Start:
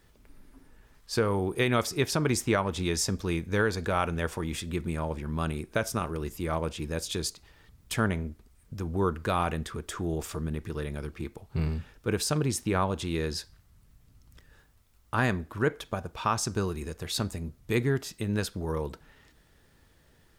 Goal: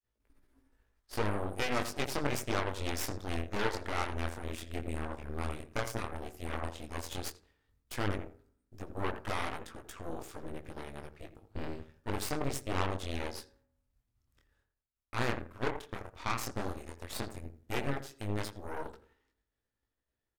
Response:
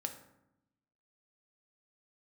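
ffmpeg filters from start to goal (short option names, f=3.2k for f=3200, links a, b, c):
-filter_complex "[0:a]agate=range=-33dB:threshold=-51dB:ratio=3:detection=peak,asplit=2[a][b];[b]adelay=84,lowpass=f=1.2k:p=1,volume=-7.5dB,asplit=2[c][d];[d]adelay=84,lowpass=f=1.2k:p=1,volume=0.33,asplit=2[e][f];[f]adelay=84,lowpass=f=1.2k:p=1,volume=0.33,asplit=2[g][h];[h]adelay=84,lowpass=f=1.2k:p=1,volume=0.33[i];[a][c][e][g][i]amix=inputs=5:normalize=0,flanger=delay=18:depth=7.6:speed=0.1,aeval=exprs='0.168*(cos(1*acos(clip(val(0)/0.168,-1,1)))-cos(1*PI/2))+0.0473*(cos(3*acos(clip(val(0)/0.168,-1,1)))-cos(3*PI/2))+0.0211*(cos(4*acos(clip(val(0)/0.168,-1,1)))-cos(4*PI/2))+0.00473*(cos(5*acos(clip(val(0)/0.168,-1,1)))-cos(5*PI/2))+0.0119*(cos(8*acos(clip(val(0)/0.168,-1,1)))-cos(8*PI/2))':c=same,equalizer=f=170:w=5.4:g=-13,asplit=2[j][k];[1:a]atrim=start_sample=2205,lowpass=3.3k,lowshelf=f=390:g=-11[l];[k][l]afir=irnorm=-1:irlink=0,volume=-12dB[m];[j][m]amix=inputs=2:normalize=0,volume=-1dB"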